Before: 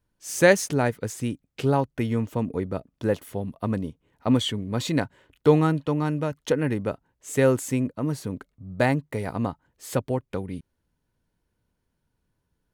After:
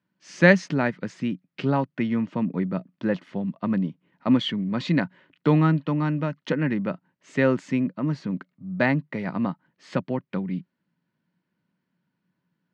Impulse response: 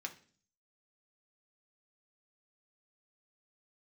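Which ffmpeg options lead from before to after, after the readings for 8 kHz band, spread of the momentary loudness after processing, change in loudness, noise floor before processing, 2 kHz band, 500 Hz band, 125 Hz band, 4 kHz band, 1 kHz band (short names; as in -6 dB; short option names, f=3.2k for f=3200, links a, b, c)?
under -10 dB, 11 LU, +0.5 dB, -77 dBFS, +3.0 dB, -3.0 dB, +0.5 dB, -1.5 dB, -1.0 dB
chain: -af "highpass=f=150:w=0.5412,highpass=f=150:w=1.3066,equalizer=f=180:t=q:w=4:g=9,equalizer=f=450:t=q:w=4:g=-9,equalizer=f=770:t=q:w=4:g=-5,equalizer=f=1.9k:t=q:w=4:g=3,equalizer=f=3.6k:t=q:w=4:g=-4,lowpass=f=4.4k:w=0.5412,lowpass=f=4.4k:w=1.3066,volume=1.5dB"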